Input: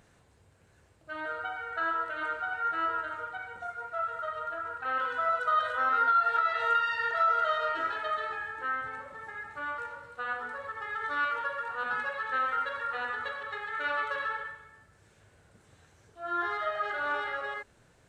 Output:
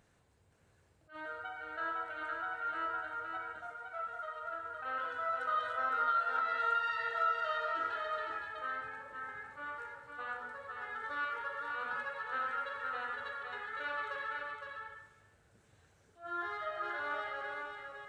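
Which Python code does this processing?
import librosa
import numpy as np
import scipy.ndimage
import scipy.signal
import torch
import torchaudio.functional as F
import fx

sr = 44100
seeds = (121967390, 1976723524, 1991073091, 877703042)

y = fx.peak_eq(x, sr, hz=130.0, db=-12.5, octaves=1.9, at=(3.75, 4.43))
y = y + 10.0 ** (-5.0 / 20.0) * np.pad(y, (int(511 * sr / 1000.0), 0))[:len(y)]
y = fx.attack_slew(y, sr, db_per_s=220.0)
y = y * 10.0 ** (-7.5 / 20.0)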